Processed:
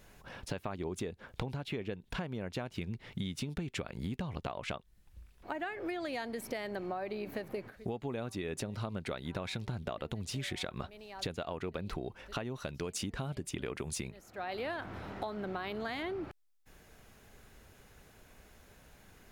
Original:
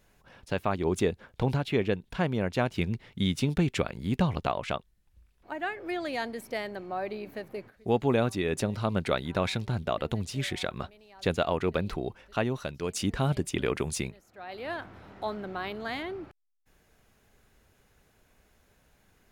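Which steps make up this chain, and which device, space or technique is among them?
serial compression, peaks first (compression, threshold -37 dBFS, peak gain reduction 16.5 dB; compression 2:1, threshold -43 dBFS, peak gain reduction 6 dB); trim +6 dB

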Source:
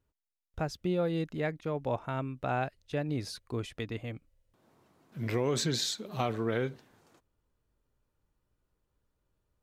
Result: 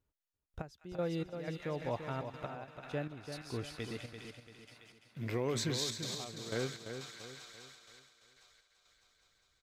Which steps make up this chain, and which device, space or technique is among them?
feedback echo behind a high-pass 202 ms, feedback 78%, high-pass 1.7 kHz, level -5 dB; trance gate with a delay (trance gate "xxx.x...xx..xxx" 122 bpm -12 dB; feedback delay 340 ms, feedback 41%, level -8 dB); trim -5 dB

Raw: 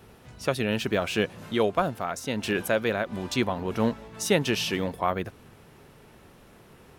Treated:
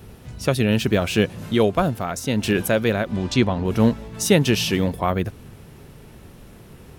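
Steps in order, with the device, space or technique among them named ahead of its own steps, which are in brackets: 3.12–3.65 s: low-pass 6.6 kHz 12 dB/octave; smiley-face EQ (bass shelf 190 Hz +8.5 dB; peaking EQ 1.1 kHz -3.5 dB 2.1 oct; treble shelf 8.2 kHz +3.5 dB); trim +5.5 dB

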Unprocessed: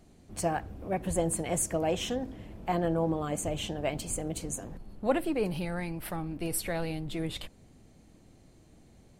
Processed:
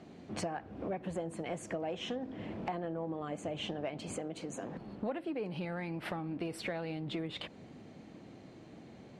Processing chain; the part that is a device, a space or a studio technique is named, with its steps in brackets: AM radio (band-pass 160–3500 Hz; compression 8:1, threshold -43 dBFS, peak gain reduction 21 dB; saturation -32 dBFS, distortion -26 dB); 4.14–4.76 s: bass shelf 140 Hz -9.5 dB; trim +8.5 dB

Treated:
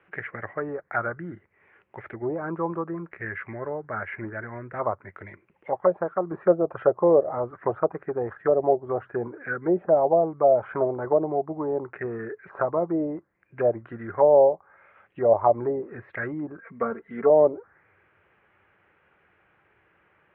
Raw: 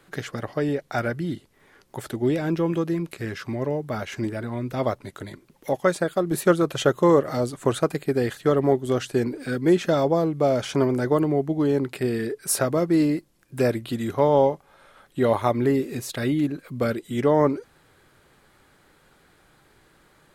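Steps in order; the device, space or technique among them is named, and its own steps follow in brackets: envelope filter bass rig (touch-sensitive low-pass 650–2800 Hz down, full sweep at -16 dBFS; cabinet simulation 80–2100 Hz, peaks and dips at 94 Hz +4 dB, 140 Hz -8 dB, 260 Hz -10 dB); 16.59–17.30 s: comb 4.4 ms, depth 79%; dynamic bell 2.4 kHz, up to +3 dB, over -40 dBFS, Q 1.8; trim -5.5 dB

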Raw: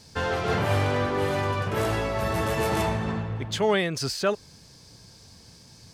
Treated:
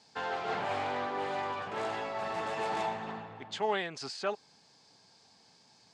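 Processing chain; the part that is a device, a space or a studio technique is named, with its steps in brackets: full-range speaker at full volume (loudspeaker Doppler distortion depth 0.16 ms; cabinet simulation 280–7400 Hz, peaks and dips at 330 Hz -4 dB, 520 Hz -4 dB, 800 Hz +8 dB, 5.8 kHz -5 dB); trim -8 dB

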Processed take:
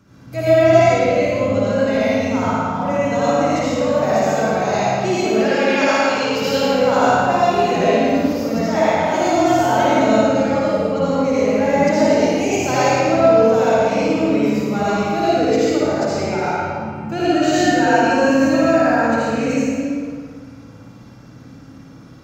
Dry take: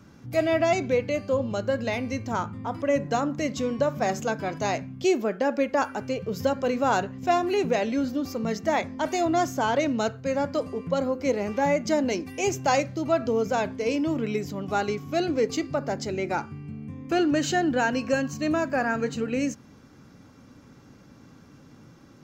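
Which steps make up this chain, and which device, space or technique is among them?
5.40–6.59 s: frequency weighting D; tunnel (flutter echo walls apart 9.6 m, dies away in 0.76 s; reverberation RT60 2.0 s, pre-delay 70 ms, DRR -9 dB); trim -2.5 dB

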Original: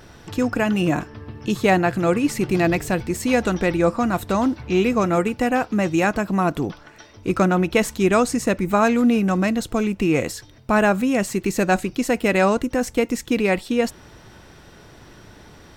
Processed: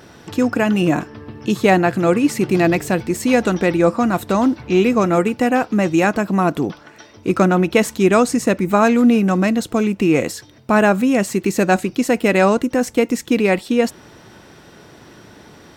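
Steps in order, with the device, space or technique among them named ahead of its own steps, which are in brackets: filter by subtraction (in parallel: low-pass 230 Hz 12 dB/octave + polarity flip); on the sum: trim +2.5 dB

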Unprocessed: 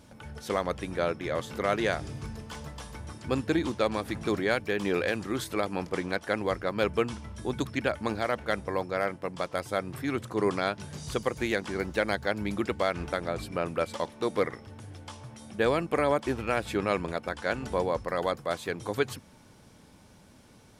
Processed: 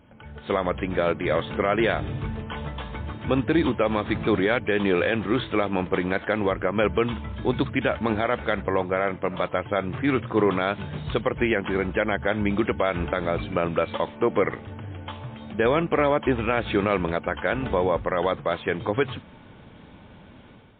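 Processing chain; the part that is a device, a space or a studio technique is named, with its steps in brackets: low-bitrate web radio (level rider gain up to 9 dB; peak limiter -10.5 dBFS, peak gain reduction 5.5 dB; MP3 24 kbps 8 kHz)

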